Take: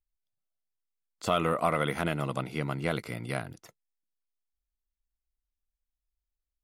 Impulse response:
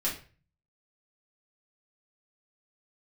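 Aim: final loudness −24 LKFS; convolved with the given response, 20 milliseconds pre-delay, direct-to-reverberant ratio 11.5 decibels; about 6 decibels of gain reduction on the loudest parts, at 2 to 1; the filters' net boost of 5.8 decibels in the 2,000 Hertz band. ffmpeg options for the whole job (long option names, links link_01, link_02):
-filter_complex "[0:a]equalizer=frequency=2000:width_type=o:gain=7,acompressor=threshold=-31dB:ratio=2,asplit=2[link_01][link_02];[1:a]atrim=start_sample=2205,adelay=20[link_03];[link_02][link_03]afir=irnorm=-1:irlink=0,volume=-18dB[link_04];[link_01][link_04]amix=inputs=2:normalize=0,volume=9.5dB"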